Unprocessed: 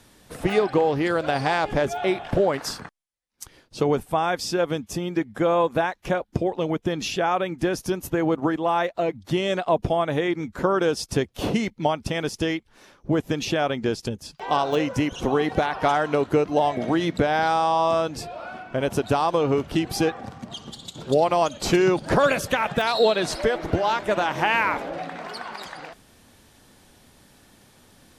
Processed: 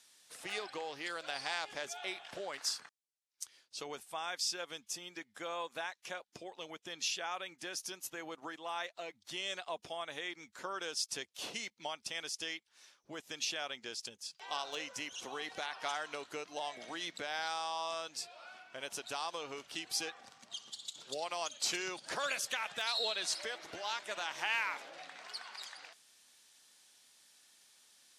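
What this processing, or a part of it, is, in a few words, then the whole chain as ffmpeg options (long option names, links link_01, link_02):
piezo pickup straight into a mixer: -af "lowpass=7100,aderivative"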